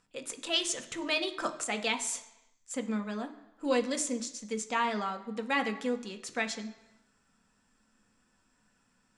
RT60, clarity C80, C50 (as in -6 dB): 1.0 s, 15.5 dB, 12.5 dB